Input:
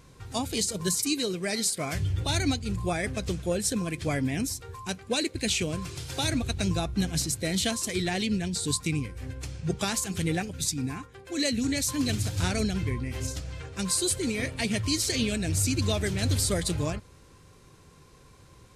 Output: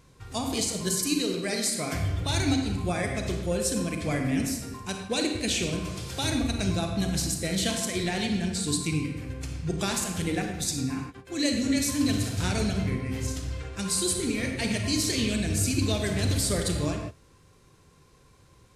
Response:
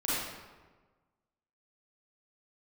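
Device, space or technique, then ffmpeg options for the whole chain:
keyed gated reverb: -filter_complex "[0:a]asplit=3[s0][s1][s2];[1:a]atrim=start_sample=2205[s3];[s1][s3]afir=irnorm=-1:irlink=0[s4];[s2]apad=whole_len=827061[s5];[s4][s5]sidechaingate=range=0.0224:threshold=0.00562:ratio=16:detection=peak,volume=0.376[s6];[s0][s6]amix=inputs=2:normalize=0,volume=0.668"

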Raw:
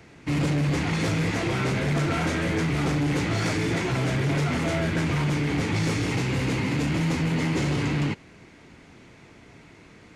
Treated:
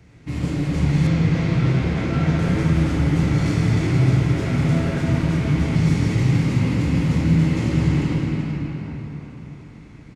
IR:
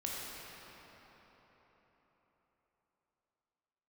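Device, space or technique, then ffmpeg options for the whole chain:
cave: -filter_complex "[0:a]aecho=1:1:377:0.355[s0];[1:a]atrim=start_sample=2205[s1];[s0][s1]afir=irnorm=-1:irlink=0,asettb=1/sr,asplit=3[s2][s3][s4];[s2]atrim=end=1.074[s5];[s3]atrim=start=1.07:end=2.39,asetpts=PTS-STARTPTS,afade=t=in:d=0.004:c=qsin,afade=t=out:st=1.316:d=0.004:c=qsin,acrossover=split=6100[s6][s7];[s7]acompressor=threshold=0.00141:ratio=4:attack=1:release=60[s8];[s6][s8]amix=inputs=2:normalize=0[s9];[s4]atrim=start=2.386[s10];[s5][s9]acrossfade=d=0.004:c1=hsin:c2=qsin[s11];[s11][s10]acrossfade=d=0.004:c1=qsin:c2=hsin,bass=f=250:g=11,treble=f=4000:g=2,volume=0.562"

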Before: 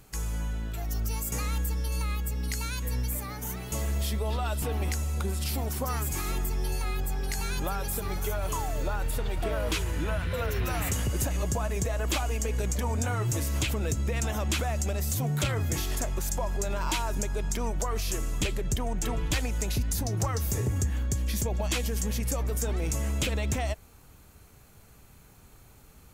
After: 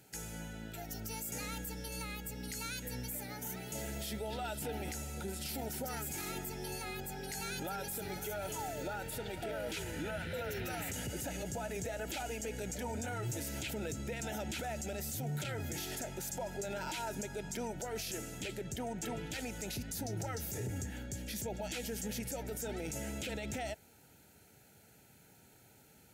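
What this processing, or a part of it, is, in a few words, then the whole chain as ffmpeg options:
PA system with an anti-feedback notch: -af "highpass=140,asuperstop=centerf=1100:order=8:qfactor=3.3,alimiter=level_in=1.41:limit=0.0631:level=0:latency=1:release=15,volume=0.708,volume=0.631"

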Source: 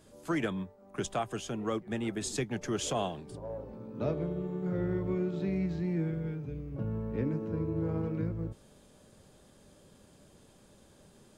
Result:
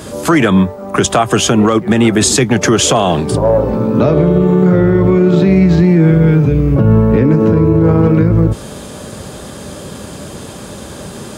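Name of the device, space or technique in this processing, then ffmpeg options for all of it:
mastering chain: -af "highpass=f=48:w=0.5412,highpass=f=48:w=1.3066,equalizer=f=1200:t=o:w=0.55:g=3,acompressor=threshold=0.0158:ratio=2,asoftclip=type=hard:threshold=0.0501,alimiter=level_in=37.6:limit=0.891:release=50:level=0:latency=1,volume=0.891"

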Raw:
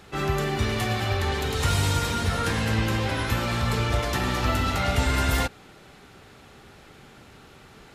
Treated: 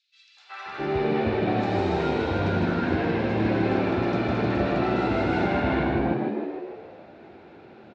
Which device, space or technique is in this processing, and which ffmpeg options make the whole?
frequency-shifting delay pedal into a guitar cabinet: -filter_complex "[0:a]asettb=1/sr,asplit=3[s0][s1][s2];[s0]atrim=end=0.734[s3];[s1]atrim=start=0.73:end=1.6,asetpts=PTS-STARTPTS,afade=t=in:d=0.004:c=qsin,afade=t=out:st=0.866:d=0.004:c=qsin,acrossover=split=4800[s4][s5];[s5]acompressor=threshold=0.00501:ratio=4:attack=1:release=60[s6];[s4][s6]amix=inputs=2:normalize=0[s7];[s2]atrim=start=1.596[s8];[s3][s7]acrossfade=d=0.004:c1=hsin:c2=qsin[s9];[s9][s8]acrossfade=d=0.004:c1=qsin:c2=hsin,asplit=9[s10][s11][s12][s13][s14][s15][s16][s17][s18];[s11]adelay=155,afreqshift=76,volume=0.631[s19];[s12]adelay=310,afreqshift=152,volume=0.372[s20];[s13]adelay=465,afreqshift=228,volume=0.219[s21];[s14]adelay=620,afreqshift=304,volume=0.13[s22];[s15]adelay=775,afreqshift=380,volume=0.0767[s23];[s16]adelay=930,afreqshift=456,volume=0.0452[s24];[s17]adelay=1085,afreqshift=532,volume=0.0266[s25];[s18]adelay=1240,afreqshift=608,volume=0.0157[s26];[s10][s19][s20][s21][s22][s23][s24][s25][s26]amix=inputs=9:normalize=0,highpass=110,equalizer=f=140:t=q:w=4:g=-6,equalizer=f=350:t=q:w=4:g=7,equalizer=f=740:t=q:w=4:g=6,equalizer=f=1200:t=q:w=4:g=-5,equalizer=f=1900:t=q:w=4:g=-6,equalizer=f=3100:t=q:w=4:g=-9,lowpass=f=3500:w=0.5412,lowpass=f=3500:w=1.3066,acrossover=split=1000|3900[s27][s28][s29];[s28]adelay=370[s30];[s27]adelay=660[s31];[s31][s30][s29]amix=inputs=3:normalize=0"

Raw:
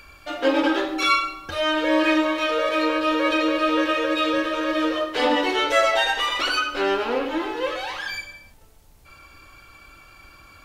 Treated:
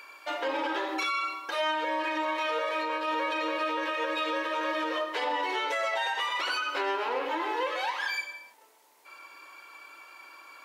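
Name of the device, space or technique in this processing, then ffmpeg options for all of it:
laptop speaker: -af "highpass=f=350:w=0.5412,highpass=f=350:w=1.3066,equalizer=f=960:t=o:w=0.23:g=12,equalizer=f=2000:t=o:w=0.5:g=5,alimiter=limit=0.119:level=0:latency=1:release=140,volume=0.708"

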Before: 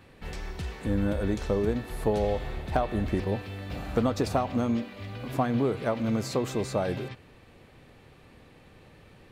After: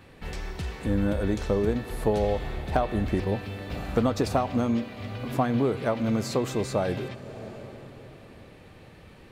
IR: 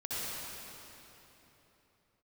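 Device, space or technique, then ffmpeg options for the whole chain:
ducked reverb: -filter_complex "[0:a]asplit=3[s0][s1][s2];[1:a]atrim=start_sample=2205[s3];[s1][s3]afir=irnorm=-1:irlink=0[s4];[s2]apad=whole_len=410962[s5];[s4][s5]sidechaincompress=threshold=0.01:ratio=8:attack=37:release=490,volume=0.282[s6];[s0][s6]amix=inputs=2:normalize=0,volume=1.19"

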